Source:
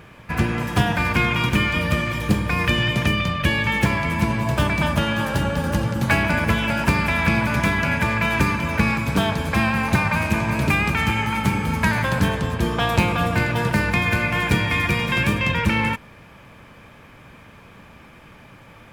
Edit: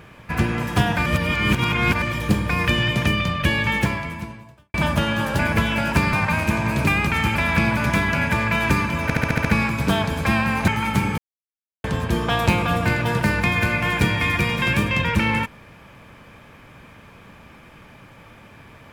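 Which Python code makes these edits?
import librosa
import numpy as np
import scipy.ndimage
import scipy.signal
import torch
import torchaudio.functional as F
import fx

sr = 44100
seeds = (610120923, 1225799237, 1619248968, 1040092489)

y = fx.edit(x, sr, fx.reverse_span(start_s=1.06, length_s=0.96),
    fx.fade_out_span(start_s=3.75, length_s=0.99, curve='qua'),
    fx.cut(start_s=5.39, length_s=0.92),
    fx.stutter(start_s=8.73, slice_s=0.07, count=7),
    fx.move(start_s=9.96, length_s=1.22, to_s=7.05),
    fx.silence(start_s=11.68, length_s=0.66), tone=tone)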